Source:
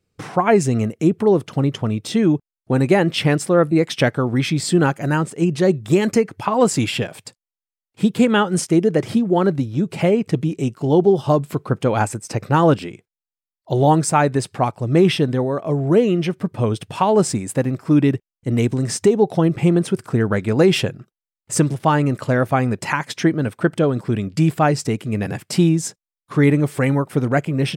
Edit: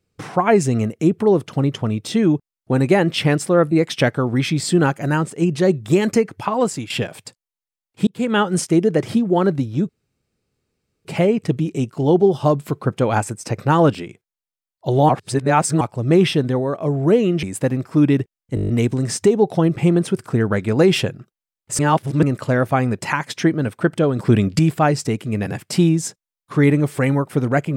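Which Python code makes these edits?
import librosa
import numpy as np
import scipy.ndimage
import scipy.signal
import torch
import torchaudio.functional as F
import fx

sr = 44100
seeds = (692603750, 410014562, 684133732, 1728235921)

y = fx.edit(x, sr, fx.fade_out_to(start_s=6.26, length_s=0.64, curve='qsin', floor_db=-15.5),
    fx.fade_in_span(start_s=8.07, length_s=0.34),
    fx.insert_room_tone(at_s=9.89, length_s=1.16),
    fx.reverse_span(start_s=13.93, length_s=0.72),
    fx.cut(start_s=16.27, length_s=1.1),
    fx.stutter(start_s=18.49, slice_s=0.02, count=8),
    fx.reverse_span(start_s=21.59, length_s=0.44),
    fx.clip_gain(start_s=23.99, length_s=0.4, db=6.5), tone=tone)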